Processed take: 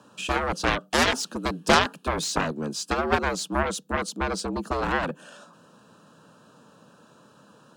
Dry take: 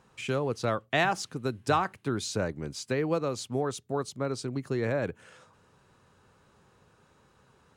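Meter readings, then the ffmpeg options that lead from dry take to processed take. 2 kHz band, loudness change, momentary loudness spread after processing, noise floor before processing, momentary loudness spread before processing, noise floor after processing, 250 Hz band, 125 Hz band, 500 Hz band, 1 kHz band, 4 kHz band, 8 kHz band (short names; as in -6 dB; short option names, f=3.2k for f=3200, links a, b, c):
+7.5 dB, +5.0 dB, 9 LU, -64 dBFS, 7 LU, -56 dBFS, +3.5 dB, -0.5 dB, +2.0 dB, +6.5 dB, +9.5 dB, +8.0 dB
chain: -af "asuperstop=centerf=2000:order=4:qfactor=2.4,afreqshift=72,aeval=exprs='0.237*(cos(1*acos(clip(val(0)/0.237,-1,1)))-cos(1*PI/2))+0.075*(cos(7*acos(clip(val(0)/0.237,-1,1)))-cos(7*PI/2))':c=same,volume=6.5dB"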